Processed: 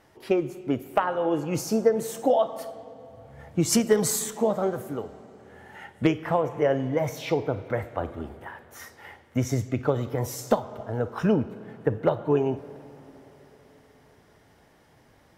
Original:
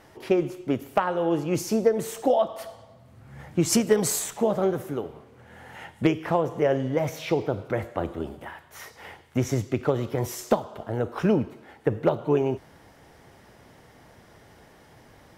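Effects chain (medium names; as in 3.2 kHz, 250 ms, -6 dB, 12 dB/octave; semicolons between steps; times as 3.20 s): spectral noise reduction 6 dB; on a send: reverberation RT60 3.8 s, pre-delay 43 ms, DRR 15.5 dB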